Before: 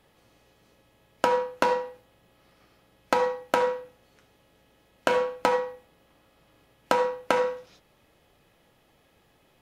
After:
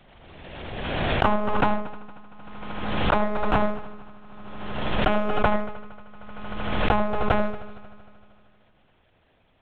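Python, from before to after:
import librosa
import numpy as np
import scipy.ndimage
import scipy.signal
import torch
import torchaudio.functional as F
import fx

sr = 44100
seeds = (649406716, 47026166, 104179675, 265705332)

p1 = fx.lpc_monotone(x, sr, seeds[0], pitch_hz=210.0, order=8)
p2 = np.sign(p1) * np.maximum(np.abs(p1) - 10.0 ** (-42.5 / 20.0), 0.0)
p3 = p1 + F.gain(torch.from_numpy(p2), -8.5).numpy()
p4 = fx.hum_notches(p3, sr, base_hz=60, count=7)
p5 = p4 + fx.echo_heads(p4, sr, ms=77, heads='first and third', feedback_pct=63, wet_db=-19.5, dry=0)
y = fx.pre_swell(p5, sr, db_per_s=30.0)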